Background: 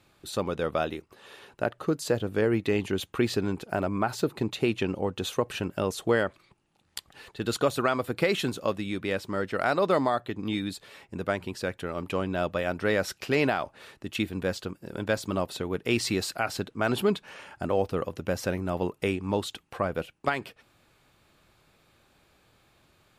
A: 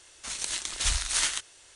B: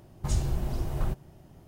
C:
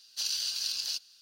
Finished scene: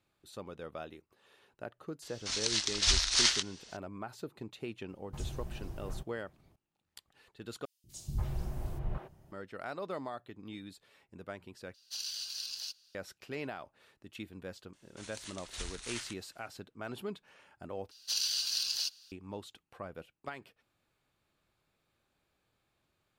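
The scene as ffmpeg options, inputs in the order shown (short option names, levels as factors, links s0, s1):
-filter_complex "[1:a]asplit=2[s0][s1];[2:a]asplit=2[s2][s3];[3:a]asplit=2[s4][s5];[0:a]volume=0.168[s6];[s0]lowpass=f=5100:t=q:w=2.6[s7];[s3]acrossover=split=310|3400[s8][s9][s10];[s8]adelay=190[s11];[s9]adelay=290[s12];[s11][s12][s10]amix=inputs=3:normalize=0[s13];[s1]highshelf=f=8100:g=-8.5[s14];[s6]asplit=4[s15][s16][s17][s18];[s15]atrim=end=7.654[s19];[s13]atrim=end=1.67,asetpts=PTS-STARTPTS,volume=0.447[s20];[s16]atrim=start=9.316:end=11.744[s21];[s4]atrim=end=1.21,asetpts=PTS-STARTPTS,volume=0.422[s22];[s17]atrim=start=12.946:end=17.914[s23];[s5]atrim=end=1.21,asetpts=PTS-STARTPTS,volume=0.944[s24];[s18]atrim=start=19.116[s25];[s7]atrim=end=1.75,asetpts=PTS-STARTPTS,volume=0.75,afade=t=in:d=0.004:c=hsin,afade=t=out:st=1.746:d=0.004:c=hsin,adelay=2020[s26];[s2]atrim=end=1.67,asetpts=PTS-STARTPTS,volume=0.237,afade=t=in:d=0.004:c=hsin,afade=t=out:st=1.666:d=0.004:c=hsin,adelay=215649S[s27];[s14]atrim=end=1.75,asetpts=PTS-STARTPTS,volume=0.211,afade=t=in:d=0.004:c=hsin,afade=t=out:st=1.746:d=0.004:c=hsin,adelay=14730[s28];[s19][s20]acrossfade=d=0.004:c1=hsin:c2=hsin[s29];[s29][s21]acrossfade=d=0.004:c1=hsin:c2=hsin[s30];[s30][s22]acrossfade=d=0.004:c1=hsin:c2=hsin[s31];[s31][s23]acrossfade=d=0.004:c1=hsin:c2=hsin[s32];[s32][s24]acrossfade=d=0.004:c1=hsin:c2=hsin[s33];[s33][s25]acrossfade=d=0.004:c1=hsin:c2=hsin[s34];[s34][s26][s27][s28]amix=inputs=4:normalize=0"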